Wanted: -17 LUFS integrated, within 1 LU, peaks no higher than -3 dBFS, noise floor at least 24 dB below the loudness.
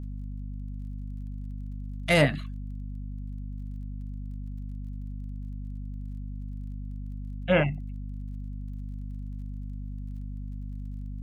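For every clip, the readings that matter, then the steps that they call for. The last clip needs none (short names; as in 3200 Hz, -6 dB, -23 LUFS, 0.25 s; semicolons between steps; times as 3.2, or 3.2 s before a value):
ticks 31/s; hum 50 Hz; harmonics up to 250 Hz; hum level -33 dBFS; loudness -33.5 LUFS; peak -8.0 dBFS; loudness target -17.0 LUFS
-> de-click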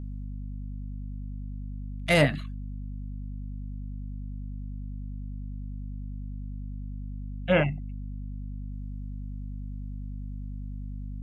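ticks 0/s; hum 50 Hz; harmonics up to 250 Hz; hum level -33 dBFS
-> notches 50/100/150/200/250 Hz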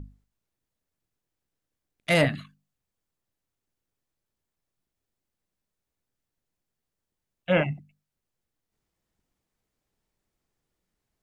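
hum none; loudness -25.0 LUFS; peak -9.5 dBFS; loudness target -17.0 LUFS
-> gain +8 dB; limiter -3 dBFS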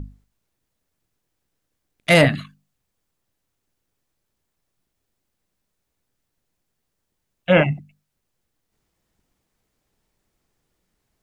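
loudness -17.0 LUFS; peak -3.0 dBFS; noise floor -78 dBFS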